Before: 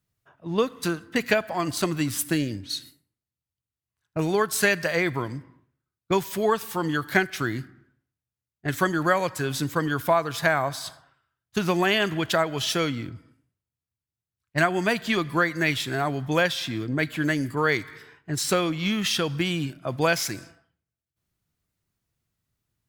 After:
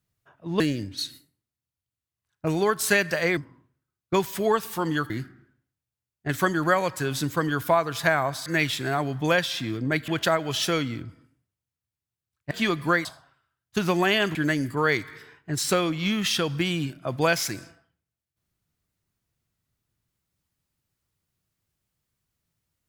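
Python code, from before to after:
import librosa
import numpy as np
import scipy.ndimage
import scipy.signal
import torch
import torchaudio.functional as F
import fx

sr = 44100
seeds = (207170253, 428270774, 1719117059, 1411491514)

y = fx.edit(x, sr, fx.cut(start_s=0.6, length_s=1.72),
    fx.cut(start_s=5.09, length_s=0.26),
    fx.cut(start_s=7.08, length_s=0.41),
    fx.swap(start_s=10.85, length_s=1.3, other_s=15.53, other_length_s=1.62),
    fx.cut(start_s=14.58, length_s=0.41), tone=tone)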